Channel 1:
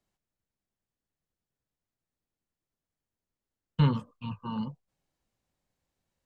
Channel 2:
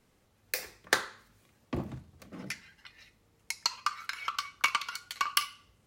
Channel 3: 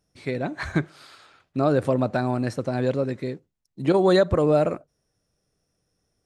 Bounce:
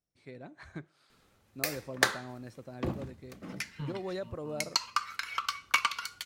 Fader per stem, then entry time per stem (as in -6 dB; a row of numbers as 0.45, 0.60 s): -16.5, +1.0, -19.5 dB; 0.00, 1.10, 0.00 s